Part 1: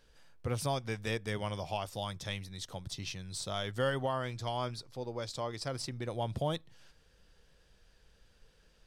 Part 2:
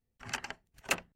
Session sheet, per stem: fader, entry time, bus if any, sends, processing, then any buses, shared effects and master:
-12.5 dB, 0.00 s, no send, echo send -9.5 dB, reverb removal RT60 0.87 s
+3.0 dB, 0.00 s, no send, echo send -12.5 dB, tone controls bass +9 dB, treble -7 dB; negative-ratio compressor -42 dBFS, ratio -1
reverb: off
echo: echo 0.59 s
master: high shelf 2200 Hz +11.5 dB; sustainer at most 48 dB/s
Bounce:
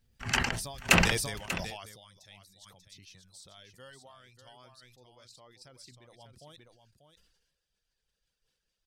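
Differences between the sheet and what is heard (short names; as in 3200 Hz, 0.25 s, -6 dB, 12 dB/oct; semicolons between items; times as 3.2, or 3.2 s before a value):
stem 1 -12.5 dB -> -21.5 dB; stem 2: missing negative-ratio compressor -42 dBFS, ratio -1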